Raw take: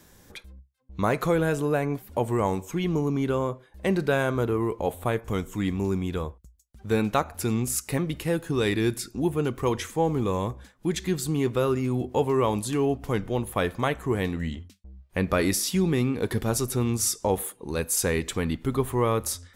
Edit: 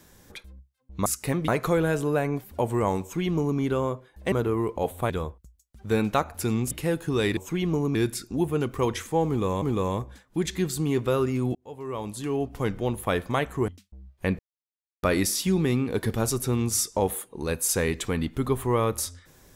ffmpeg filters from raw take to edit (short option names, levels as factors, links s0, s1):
-filter_complex "[0:a]asplit=12[s0][s1][s2][s3][s4][s5][s6][s7][s8][s9][s10][s11];[s0]atrim=end=1.062[s12];[s1]atrim=start=7.708:end=8.132[s13];[s2]atrim=start=1.058:end=3.902[s14];[s3]atrim=start=4.348:end=5.132[s15];[s4]atrim=start=6.098:end=7.712[s16];[s5]atrim=start=8.128:end=8.792[s17];[s6]atrim=start=2.588:end=3.172[s18];[s7]atrim=start=8.788:end=10.462[s19];[s8]atrim=start=10.108:end=12.04,asetpts=PTS-STARTPTS,afade=t=out:st=1.928:d=0.004:c=hsin[s20];[s9]atrim=start=12.04:end=14.172,asetpts=PTS-STARTPTS,afade=t=in:d=1.18[s21];[s10]atrim=start=14.598:end=15.31,asetpts=PTS-STARTPTS,afade=t=out:st=0.708:d=0.004:c=hsin,apad=pad_dur=0.64[s22];[s11]atrim=start=15.31,asetpts=PTS-STARTPTS,afade=t=in:d=0.004:c=hsin[s23];[s12][s13]acrossfade=d=0.004:c1=hsin:c2=hsin[s24];[s24][s14]acrossfade=d=0.004:c1=hsin:c2=hsin[s25];[s25][s15]acrossfade=d=0.004:c1=hsin:c2=hsin[s26];[s26][s16]acrossfade=d=0.004:c1=hsin:c2=hsin[s27];[s27][s17]acrossfade=d=0.004:c1=hsin:c2=hsin[s28];[s28][s18]acrossfade=d=0.004:c1=hsin:c2=hsin[s29];[s29][s19]acrossfade=d=0.004:c1=hsin:c2=hsin[s30];[s20][s21]concat=n=2:v=0:a=1[s31];[s30][s31]acrossfade=d=0.004:c1=hsin:c2=hsin[s32];[s22][s23]concat=n=2:v=0:a=1[s33];[s32][s33]acrossfade=d=0.004:c1=hsin:c2=hsin"